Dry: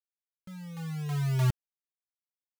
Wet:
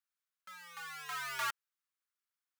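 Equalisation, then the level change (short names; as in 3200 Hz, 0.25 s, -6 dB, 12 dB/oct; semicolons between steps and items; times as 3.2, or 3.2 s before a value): resonant high-pass 1300 Hz, resonance Q 2.5; +1.0 dB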